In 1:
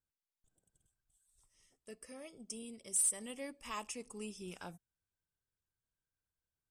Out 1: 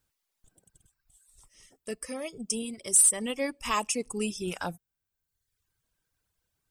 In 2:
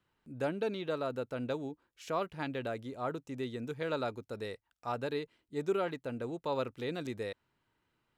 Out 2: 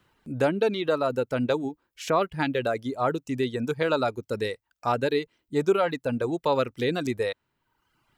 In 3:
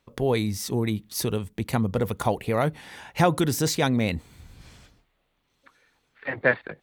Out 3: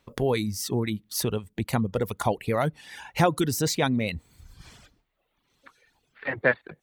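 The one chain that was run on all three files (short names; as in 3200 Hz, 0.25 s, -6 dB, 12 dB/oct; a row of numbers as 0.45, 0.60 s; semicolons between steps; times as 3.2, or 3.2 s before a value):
reverb removal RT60 1 s; in parallel at -1 dB: compressor, threshold -36 dBFS; on the sum: match loudness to -27 LUFS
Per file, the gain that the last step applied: +9.5, +7.5, -2.0 dB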